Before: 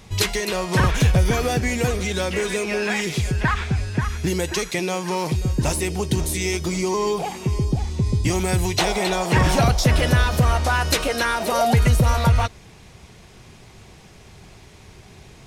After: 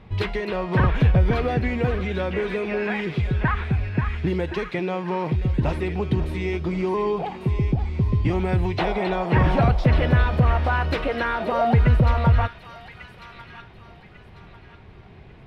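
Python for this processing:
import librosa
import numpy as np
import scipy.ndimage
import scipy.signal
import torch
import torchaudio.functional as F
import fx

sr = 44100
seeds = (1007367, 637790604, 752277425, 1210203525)

p1 = fx.air_absorb(x, sr, metres=440.0)
y = p1 + fx.echo_wet_highpass(p1, sr, ms=1146, feedback_pct=34, hz=1800.0, wet_db=-7.5, dry=0)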